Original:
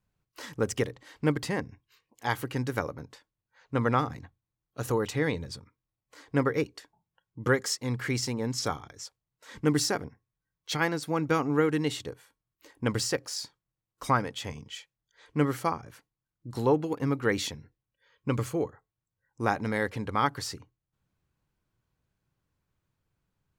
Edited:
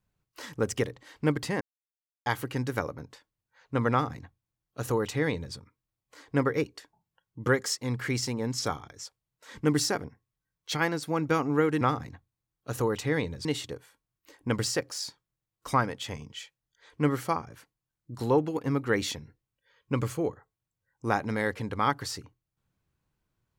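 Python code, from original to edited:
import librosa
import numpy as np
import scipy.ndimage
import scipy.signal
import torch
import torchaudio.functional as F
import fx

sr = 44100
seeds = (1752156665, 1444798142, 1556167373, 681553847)

y = fx.edit(x, sr, fx.silence(start_s=1.61, length_s=0.65),
    fx.duplicate(start_s=3.91, length_s=1.64, to_s=11.81), tone=tone)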